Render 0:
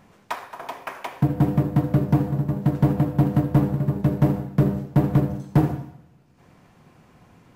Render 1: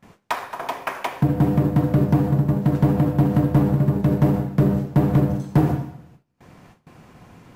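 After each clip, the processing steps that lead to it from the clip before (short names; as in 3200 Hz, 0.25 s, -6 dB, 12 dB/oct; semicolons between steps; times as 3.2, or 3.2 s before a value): gate with hold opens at -44 dBFS; limiter -15.5 dBFS, peak gain reduction 5.5 dB; gain +6 dB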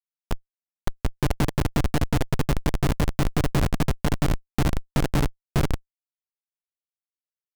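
added harmonics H 3 -6 dB, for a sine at -9 dBFS; Schmitt trigger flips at -25.5 dBFS; gain +4.5 dB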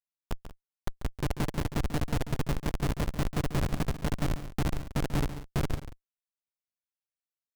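tapped delay 0.14/0.184 s -12/-17.5 dB; gain -7 dB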